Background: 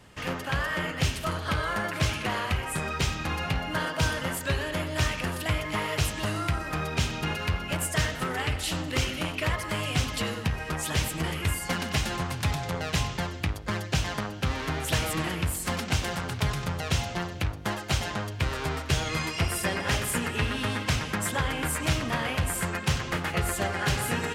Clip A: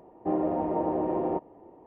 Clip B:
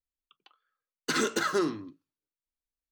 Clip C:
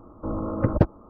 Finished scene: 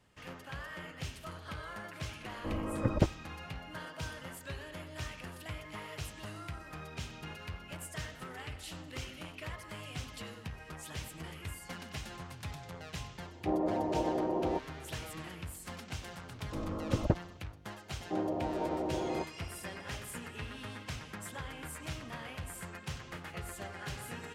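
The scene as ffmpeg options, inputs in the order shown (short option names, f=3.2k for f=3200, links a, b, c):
-filter_complex "[3:a]asplit=2[a][b];[1:a]asplit=2[c][d];[0:a]volume=-15dB[e];[a]atrim=end=1.09,asetpts=PTS-STARTPTS,volume=-8dB,afade=t=in:d=0.004:c=hsin,afade=t=out:st=1.086:d=0.004:c=hsin,adelay=2210[f];[c]atrim=end=1.86,asetpts=PTS-STARTPTS,volume=-4.5dB,afade=t=in:d=0.004:c=hsin,afade=t=out:st=1.856:d=0.004:c=hsin,adelay=13200[g];[b]atrim=end=1.09,asetpts=PTS-STARTPTS,volume=-9.5dB,afade=t=in:d=0.004:c=hsin,afade=t=out:st=1.086:d=0.004:c=hsin,adelay=16290[h];[d]atrim=end=1.86,asetpts=PTS-STARTPTS,volume=-7dB,afade=t=in:d=0.004:c=hsin,afade=t=out:st=1.856:d=0.004:c=hsin,adelay=17850[i];[e][f][g][h][i]amix=inputs=5:normalize=0"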